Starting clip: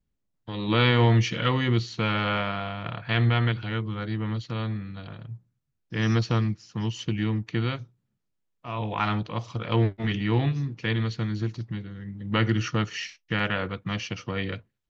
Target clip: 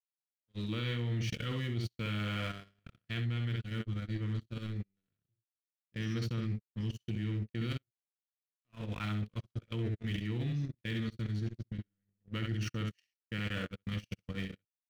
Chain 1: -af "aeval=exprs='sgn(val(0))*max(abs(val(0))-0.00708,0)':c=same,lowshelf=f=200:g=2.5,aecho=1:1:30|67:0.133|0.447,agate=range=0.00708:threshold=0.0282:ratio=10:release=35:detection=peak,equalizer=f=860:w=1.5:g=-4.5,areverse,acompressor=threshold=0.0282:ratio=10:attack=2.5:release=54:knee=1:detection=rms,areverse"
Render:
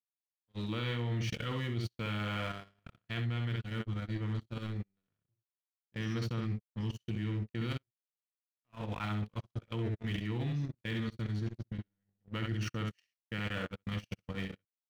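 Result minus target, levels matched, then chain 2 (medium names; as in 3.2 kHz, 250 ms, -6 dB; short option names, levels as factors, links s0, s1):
1 kHz band +4.0 dB
-af "aeval=exprs='sgn(val(0))*max(abs(val(0))-0.00708,0)':c=same,lowshelf=f=200:g=2.5,aecho=1:1:30|67:0.133|0.447,agate=range=0.00708:threshold=0.0282:ratio=10:release=35:detection=peak,equalizer=f=860:w=1.5:g=-15,areverse,acompressor=threshold=0.0282:ratio=10:attack=2.5:release=54:knee=1:detection=rms,areverse"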